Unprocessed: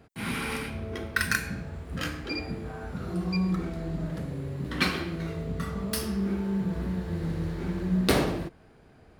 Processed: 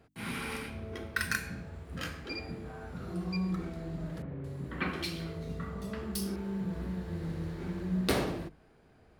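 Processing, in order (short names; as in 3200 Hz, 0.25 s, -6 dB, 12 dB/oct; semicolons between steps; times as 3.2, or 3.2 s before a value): notches 50/100/150/200/250/300 Hz; 4.22–6.36 bands offset in time lows, highs 0.22 s, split 2700 Hz; gain -5.5 dB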